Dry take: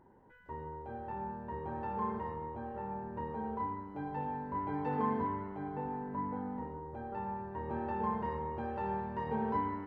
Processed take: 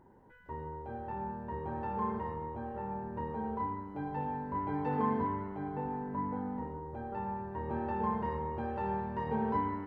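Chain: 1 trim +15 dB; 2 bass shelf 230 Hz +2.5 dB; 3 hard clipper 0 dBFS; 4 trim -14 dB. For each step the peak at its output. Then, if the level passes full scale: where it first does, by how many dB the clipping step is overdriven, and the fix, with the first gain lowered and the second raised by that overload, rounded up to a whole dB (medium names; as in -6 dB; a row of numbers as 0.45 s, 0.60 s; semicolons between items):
-6.5 dBFS, -6.0 dBFS, -6.0 dBFS, -20.0 dBFS; nothing clips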